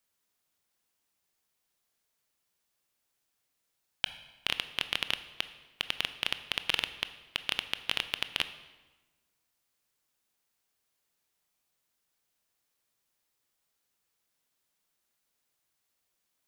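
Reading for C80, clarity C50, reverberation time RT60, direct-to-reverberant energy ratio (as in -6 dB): 14.5 dB, 12.5 dB, 1.2 s, 11.0 dB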